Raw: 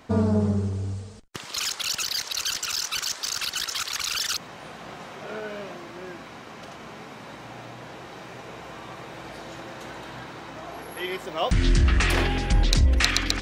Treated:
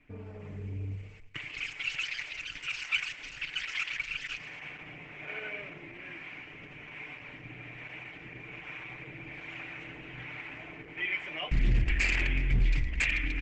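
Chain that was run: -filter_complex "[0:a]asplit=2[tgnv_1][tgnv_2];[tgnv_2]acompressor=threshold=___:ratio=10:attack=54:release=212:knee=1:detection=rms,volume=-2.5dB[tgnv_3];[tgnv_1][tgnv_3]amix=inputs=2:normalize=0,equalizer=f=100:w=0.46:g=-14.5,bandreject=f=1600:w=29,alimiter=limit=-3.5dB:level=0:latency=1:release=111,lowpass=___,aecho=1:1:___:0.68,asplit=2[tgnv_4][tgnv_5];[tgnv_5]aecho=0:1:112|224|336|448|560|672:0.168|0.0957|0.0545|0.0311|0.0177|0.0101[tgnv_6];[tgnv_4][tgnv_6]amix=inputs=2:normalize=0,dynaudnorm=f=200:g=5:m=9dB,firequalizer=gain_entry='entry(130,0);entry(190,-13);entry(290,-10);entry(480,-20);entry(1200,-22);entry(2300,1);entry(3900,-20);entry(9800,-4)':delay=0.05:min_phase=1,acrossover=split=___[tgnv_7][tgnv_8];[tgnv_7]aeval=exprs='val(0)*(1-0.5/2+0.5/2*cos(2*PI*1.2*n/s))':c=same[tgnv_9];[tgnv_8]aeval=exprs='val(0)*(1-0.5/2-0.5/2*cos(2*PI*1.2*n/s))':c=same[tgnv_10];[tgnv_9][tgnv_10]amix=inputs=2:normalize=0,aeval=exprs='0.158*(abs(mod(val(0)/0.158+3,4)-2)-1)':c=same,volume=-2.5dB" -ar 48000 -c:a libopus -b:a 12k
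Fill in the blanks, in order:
-31dB, 2600, 6.7, 530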